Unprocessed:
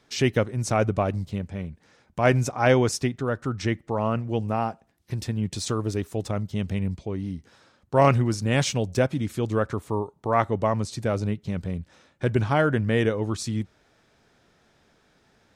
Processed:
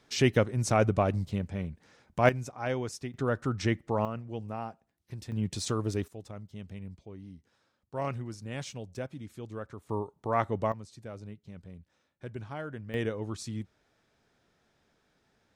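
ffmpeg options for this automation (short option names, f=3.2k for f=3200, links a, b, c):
-af "asetnsamples=n=441:p=0,asendcmd='2.29 volume volume -13dB;3.14 volume volume -2.5dB;4.05 volume volume -11.5dB;5.32 volume volume -4dB;6.08 volume volume -15.5dB;9.89 volume volume -6dB;10.72 volume volume -17.5dB;12.94 volume volume -9dB',volume=-2dB"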